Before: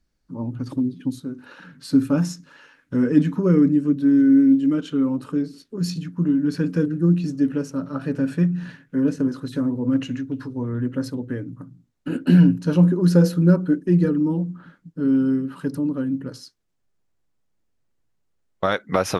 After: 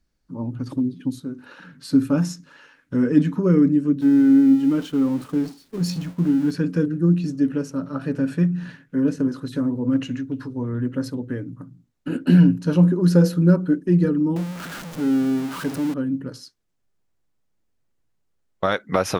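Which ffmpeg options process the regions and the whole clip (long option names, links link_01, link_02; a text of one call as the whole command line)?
ffmpeg -i in.wav -filter_complex "[0:a]asettb=1/sr,asplit=3[link_01][link_02][link_03];[link_01]atrim=end=4.014[link_04];[link_02]atrim=start=4.01:end=6.51,asetpts=PTS-STARTPTS,afade=type=in:duration=0.004:curve=qsin,afade=type=out:start_time=2.496:duration=0.004:curve=qsin,aeval=exprs='val(0)+0.5*0.0178*sgn(val(0))':channel_layout=same,agate=range=-33dB:threshold=-30dB:ratio=3:release=100:detection=peak[link_05];[link_03]atrim=start=6.506[link_06];[link_04][link_05]acrossfade=duration=0.004:curve1=hsin:curve2=qsin[link_07];[link_07][link_06]acrossfade=duration=0.004:curve1=qsin:curve2=hsin,asettb=1/sr,asplit=3[link_08][link_09][link_10];[link_08]atrim=end=14.364[link_11];[link_09]atrim=start=14.36:end=15.94,asetpts=PTS-STARTPTS,afade=type=in:duration=0.004:curve=qsin,afade=type=out:start_time=1.576:duration=0.004:curve=qsin,aeval=exprs='val(0)+0.5*0.0422*sgn(val(0))':channel_layout=same,lowshelf=frequency=180:gain=-7.5[link_12];[link_10]atrim=start=15.936[link_13];[link_11][link_12]acrossfade=duration=0.004:curve1=hsin:curve2=qsin[link_14];[link_14][link_13]acrossfade=duration=0.004:curve1=qsin:curve2=hsin" out.wav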